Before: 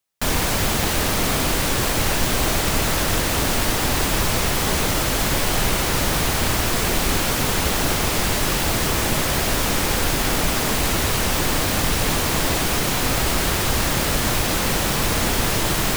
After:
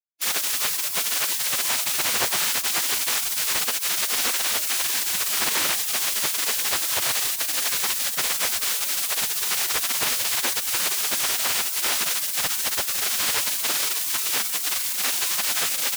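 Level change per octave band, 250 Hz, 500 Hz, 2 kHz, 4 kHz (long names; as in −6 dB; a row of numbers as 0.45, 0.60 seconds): −19.5, −13.5, −4.0, −1.0 decibels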